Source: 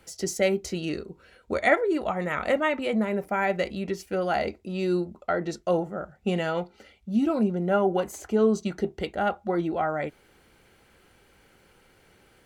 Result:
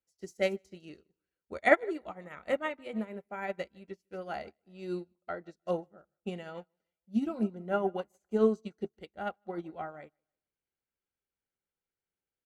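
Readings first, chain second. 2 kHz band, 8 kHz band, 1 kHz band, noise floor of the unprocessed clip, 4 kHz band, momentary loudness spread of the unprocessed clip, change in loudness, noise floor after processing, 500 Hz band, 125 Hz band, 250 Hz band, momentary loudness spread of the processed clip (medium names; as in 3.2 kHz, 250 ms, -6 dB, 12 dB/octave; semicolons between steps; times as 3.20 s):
-6.0 dB, under -15 dB, -8.5 dB, -60 dBFS, -10.5 dB, 9 LU, -7.0 dB, under -85 dBFS, -7.5 dB, -12.0 dB, -8.5 dB, 18 LU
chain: feedback delay 154 ms, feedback 39%, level -18 dB; upward expansion 2.5:1, over -42 dBFS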